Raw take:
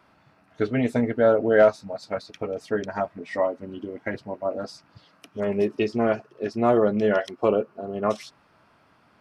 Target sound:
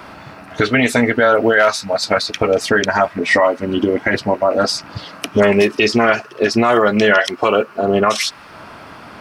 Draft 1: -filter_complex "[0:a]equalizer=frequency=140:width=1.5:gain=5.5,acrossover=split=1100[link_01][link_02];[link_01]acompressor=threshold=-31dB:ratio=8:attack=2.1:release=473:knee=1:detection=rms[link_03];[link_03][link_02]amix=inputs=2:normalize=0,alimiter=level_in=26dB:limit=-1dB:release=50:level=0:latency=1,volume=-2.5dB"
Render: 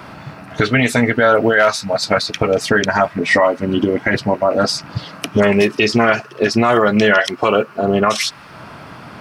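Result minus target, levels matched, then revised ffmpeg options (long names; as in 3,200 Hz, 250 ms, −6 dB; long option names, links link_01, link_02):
125 Hz band +3.5 dB
-filter_complex "[0:a]equalizer=frequency=140:width=1.5:gain=-3,acrossover=split=1100[link_01][link_02];[link_01]acompressor=threshold=-31dB:ratio=8:attack=2.1:release=473:knee=1:detection=rms[link_03];[link_03][link_02]amix=inputs=2:normalize=0,alimiter=level_in=26dB:limit=-1dB:release=50:level=0:latency=1,volume=-2.5dB"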